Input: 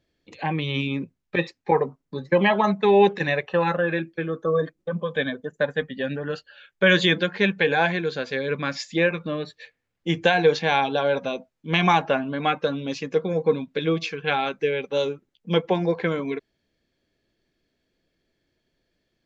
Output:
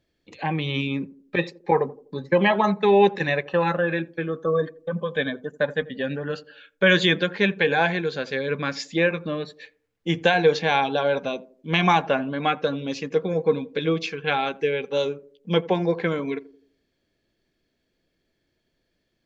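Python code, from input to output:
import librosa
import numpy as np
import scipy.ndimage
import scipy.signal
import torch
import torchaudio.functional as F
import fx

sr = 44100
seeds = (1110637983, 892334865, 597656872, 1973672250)

y = fx.echo_banded(x, sr, ms=84, feedback_pct=45, hz=350.0, wet_db=-17)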